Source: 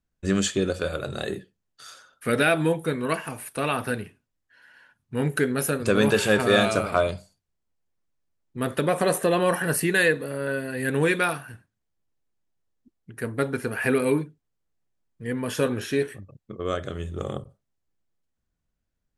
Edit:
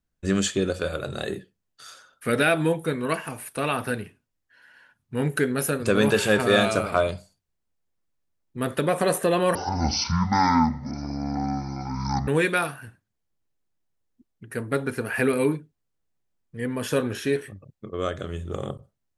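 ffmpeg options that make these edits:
ffmpeg -i in.wav -filter_complex "[0:a]asplit=3[link_01][link_02][link_03];[link_01]atrim=end=9.554[link_04];[link_02]atrim=start=9.55:end=10.94,asetpts=PTS-STARTPTS,asetrate=22491,aresample=44100,atrim=end_sample=120194,asetpts=PTS-STARTPTS[link_05];[link_03]atrim=start=10.936[link_06];[link_04][link_05]acrossfade=duration=0.004:curve1=hsin:curve2=hsin[link_07];[link_07][link_06]acrossfade=duration=0.004:curve1=hsin:curve2=hsin" out.wav

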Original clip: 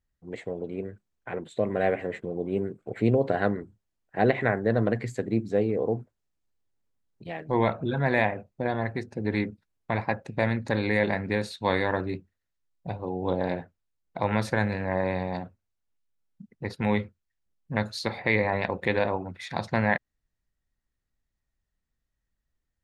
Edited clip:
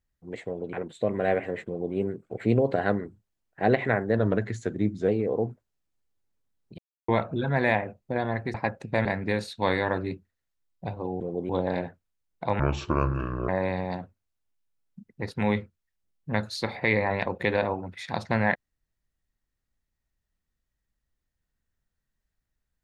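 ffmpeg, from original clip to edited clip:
ffmpeg -i in.wav -filter_complex "[0:a]asplit=12[link_01][link_02][link_03][link_04][link_05][link_06][link_07][link_08][link_09][link_10][link_11][link_12];[link_01]atrim=end=0.732[link_13];[link_02]atrim=start=1.288:end=4.744[link_14];[link_03]atrim=start=4.74:end=5.58,asetpts=PTS-STARTPTS,asetrate=41013,aresample=44100,atrim=end_sample=39832,asetpts=PTS-STARTPTS[link_15];[link_04]atrim=start=5.576:end=7.28,asetpts=PTS-STARTPTS,afade=type=out:start_time=1.7:duration=0.004:curve=hsin[link_16];[link_05]atrim=start=7.28:end=7.58,asetpts=PTS-STARTPTS,volume=0[link_17];[link_06]atrim=start=7.58:end=9.042,asetpts=PTS-STARTPTS,afade=type=in:duration=0.004:curve=hsin[link_18];[link_07]atrim=start=9.988:end=10.502[link_19];[link_08]atrim=start=11.078:end=13.232[link_20];[link_09]atrim=start=2.228:end=2.522[link_21];[link_10]atrim=start=13.228:end=14.334[link_22];[link_11]atrim=start=14.33:end=14.91,asetpts=PTS-STARTPTS,asetrate=28665,aresample=44100[link_23];[link_12]atrim=start=14.906[link_24];[link_13][link_14]acrossfade=duration=0.004:curve1=hsin:curve2=hsin[link_25];[link_25][link_15]acrossfade=duration=0.004:curve1=hsin:curve2=hsin[link_26];[link_16][link_17][link_18]concat=n=3:v=0:a=1[link_27];[link_26][link_27]acrossfade=duration=0.004:curve1=hsin:curve2=hsin[link_28];[link_28][link_19]acrossfade=duration=0.004:curve1=hsin:curve2=hsin[link_29];[link_29][link_20]acrossfade=duration=0.004:curve1=hsin:curve2=hsin[link_30];[link_30][link_21]acrossfade=duration=0.004:curve1=hsin:curve2=hsin[link_31];[link_31][link_22]acrossfade=duration=0.004:curve1=hsin:curve2=hsin[link_32];[link_32][link_23]acrossfade=duration=0.004:curve1=hsin:curve2=hsin[link_33];[link_33][link_24]acrossfade=duration=0.004:curve1=hsin:curve2=hsin" out.wav

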